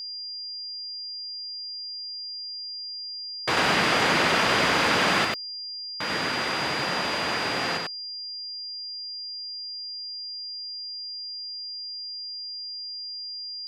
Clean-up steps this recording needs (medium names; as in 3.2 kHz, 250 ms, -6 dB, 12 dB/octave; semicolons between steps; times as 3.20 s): clip repair -12 dBFS; band-stop 4.8 kHz, Q 30; inverse comb 94 ms -3 dB